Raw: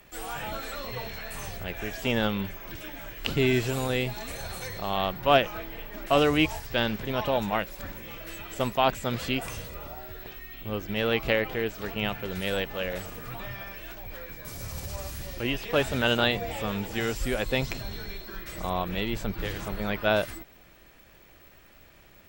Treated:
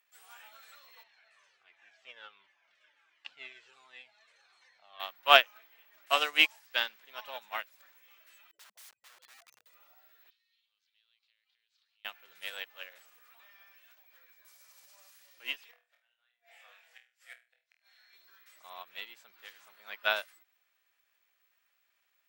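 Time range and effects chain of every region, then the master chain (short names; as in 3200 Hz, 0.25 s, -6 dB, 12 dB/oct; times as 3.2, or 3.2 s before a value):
1.03–5 Gaussian blur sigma 1.5 samples + cascading flanger falling 1.4 Hz
8.51–9.66 spectral contrast raised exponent 3.9 + steep low-pass 5900 Hz + wrapped overs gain 33 dB
10.3–12.05 compressor 12:1, threshold -37 dBFS + band-pass 4100 Hz, Q 3.8
15.71–18.13 flipped gate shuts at -17 dBFS, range -31 dB + rippled Chebyshev high-pass 480 Hz, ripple 9 dB + flutter echo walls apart 4.2 m, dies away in 0.32 s
whole clip: HPF 1200 Hz 12 dB/oct; upward expander 2.5:1, over -40 dBFS; gain +8.5 dB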